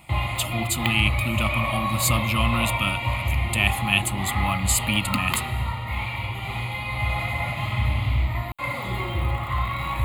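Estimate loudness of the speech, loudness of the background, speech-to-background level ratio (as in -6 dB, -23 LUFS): -25.0 LUFS, -26.5 LUFS, 1.5 dB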